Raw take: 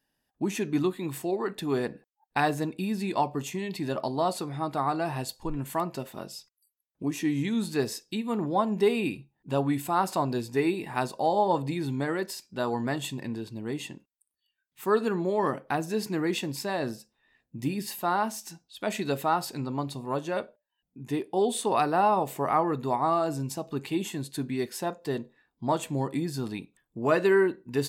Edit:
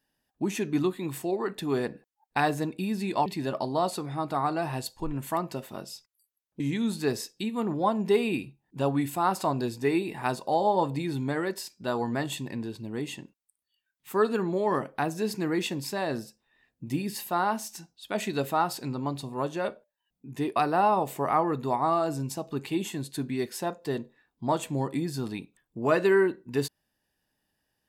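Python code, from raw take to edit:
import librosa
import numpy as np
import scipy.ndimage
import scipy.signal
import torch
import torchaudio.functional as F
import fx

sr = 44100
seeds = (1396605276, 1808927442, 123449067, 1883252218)

y = fx.edit(x, sr, fx.cut(start_s=3.26, length_s=0.43),
    fx.cut(start_s=7.03, length_s=0.29),
    fx.cut(start_s=21.28, length_s=0.48), tone=tone)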